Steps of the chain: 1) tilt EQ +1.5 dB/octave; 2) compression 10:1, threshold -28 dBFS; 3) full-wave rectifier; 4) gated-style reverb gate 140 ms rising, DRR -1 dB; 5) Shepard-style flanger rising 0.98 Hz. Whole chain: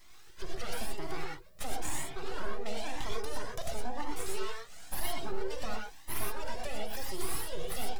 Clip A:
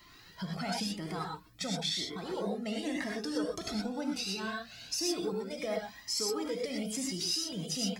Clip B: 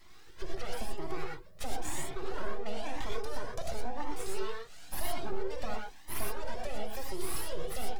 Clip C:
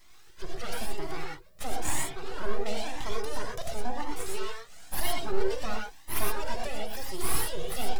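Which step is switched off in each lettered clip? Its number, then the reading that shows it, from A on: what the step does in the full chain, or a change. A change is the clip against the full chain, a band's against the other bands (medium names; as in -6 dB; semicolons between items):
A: 3, crest factor change +6.0 dB; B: 1, 4 kHz band -2.5 dB; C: 2, mean gain reduction 3.0 dB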